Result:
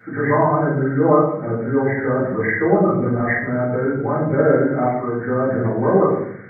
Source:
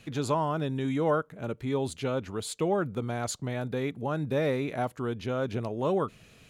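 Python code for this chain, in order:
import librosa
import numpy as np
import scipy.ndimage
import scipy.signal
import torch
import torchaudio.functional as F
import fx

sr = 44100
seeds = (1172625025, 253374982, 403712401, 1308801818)

p1 = fx.freq_compress(x, sr, knee_hz=1200.0, ratio=4.0)
p2 = scipy.signal.sosfilt(scipy.signal.butter(2, 120.0, 'highpass', fs=sr, output='sos'), p1)
p3 = fx.dispersion(p2, sr, late='highs', ms=78.0, hz=360.0, at=(2.77, 3.19))
p4 = fx.low_shelf(p3, sr, hz=450.0, db=-6.0, at=(4.84, 5.27))
p5 = p4 + fx.echo_wet_lowpass(p4, sr, ms=87, feedback_pct=34, hz=760.0, wet_db=-5.5, dry=0)
p6 = fx.room_shoebox(p5, sr, seeds[0], volume_m3=99.0, walls='mixed', distance_m=2.0)
y = p6 * librosa.db_to_amplitude(2.0)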